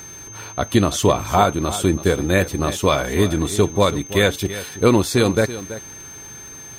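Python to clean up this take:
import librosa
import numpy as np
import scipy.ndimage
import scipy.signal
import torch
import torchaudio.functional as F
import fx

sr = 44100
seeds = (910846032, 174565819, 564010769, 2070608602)

y = fx.fix_declick_ar(x, sr, threshold=6.5)
y = fx.notch(y, sr, hz=6300.0, q=30.0)
y = fx.fix_echo_inverse(y, sr, delay_ms=330, level_db=-14.0)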